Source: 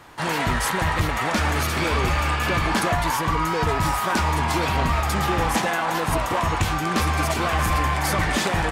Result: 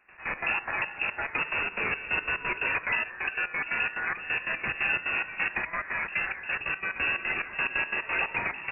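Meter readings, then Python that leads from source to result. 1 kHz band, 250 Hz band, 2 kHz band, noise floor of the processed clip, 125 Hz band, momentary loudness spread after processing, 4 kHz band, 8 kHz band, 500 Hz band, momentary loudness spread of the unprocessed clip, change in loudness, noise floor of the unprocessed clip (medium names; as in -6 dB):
-14.0 dB, -19.5 dB, -1.0 dB, -43 dBFS, -25.0 dB, 4 LU, -11.0 dB, under -40 dB, -14.5 dB, 2 LU, -6.5 dB, -25 dBFS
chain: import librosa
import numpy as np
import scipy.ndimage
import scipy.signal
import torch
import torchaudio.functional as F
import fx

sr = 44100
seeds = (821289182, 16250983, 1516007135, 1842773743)

y = fx.step_gate(x, sr, bpm=178, pattern='.x.x.xx.xx..x', floor_db=-12.0, edge_ms=4.5)
y = fx.freq_invert(y, sr, carrier_hz=2700)
y = y * 10.0 ** (-6.5 / 20.0)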